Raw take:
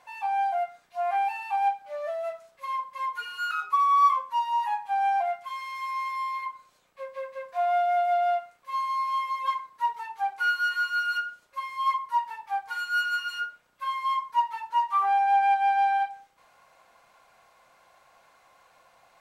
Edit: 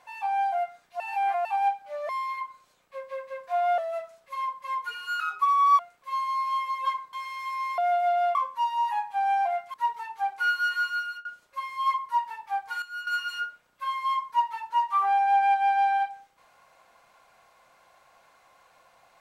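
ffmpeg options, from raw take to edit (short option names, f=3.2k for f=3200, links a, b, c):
-filter_complex "[0:a]asplit=13[a][b][c][d][e][f][g][h][i][j][k][l][m];[a]atrim=end=1.002[n];[b]atrim=start=0.998:end=1.452,asetpts=PTS-STARTPTS,areverse[o];[c]atrim=start=1.448:end=2.092[p];[d]atrim=start=6.138:end=7.832[q];[e]atrim=start=2.088:end=4.102[r];[f]atrim=start=8.398:end=9.742[s];[g]atrim=start=5.488:end=6.142[t];[h]atrim=start=7.828:end=8.402[u];[i]atrim=start=4.098:end=5.492[v];[j]atrim=start=9.738:end=11.25,asetpts=PTS-STARTPTS,afade=t=out:st=1.132:d=0.38:silence=0.0707946[w];[k]atrim=start=11.25:end=12.822,asetpts=PTS-STARTPTS,afade=t=in:d=0.004:c=hsin:silence=0.0707946[x];[l]atrim=start=12.818:end=13.072,asetpts=PTS-STARTPTS,volume=-10.5dB[y];[m]atrim=start=13.068[z];[n][o]acrossfade=d=0.004:c1=hsin:c2=hsin[aa];[aa][p]acrossfade=d=0.004:c1=hsin:c2=hsin[ab];[ab][q]acrossfade=d=0.004:c1=hsin:c2=hsin[ac];[ac][r]acrossfade=d=0.004:c1=hsin:c2=hsin[ad];[ad][s]acrossfade=d=0.004:c1=hsin:c2=hsin[ae];[ae][t]acrossfade=d=0.004:c1=hsin:c2=hsin[af];[af][u]acrossfade=d=0.004:c1=hsin:c2=hsin[ag];[ag][v]acrossfade=d=0.004:c1=hsin:c2=hsin[ah];[w][x]concat=n=2:v=0:a=1[ai];[ah][ai]acrossfade=d=0.004:c1=hsin:c2=hsin[aj];[aj][y]acrossfade=d=0.004:c1=hsin:c2=hsin[ak];[ak][z]acrossfade=d=0.004:c1=hsin:c2=hsin"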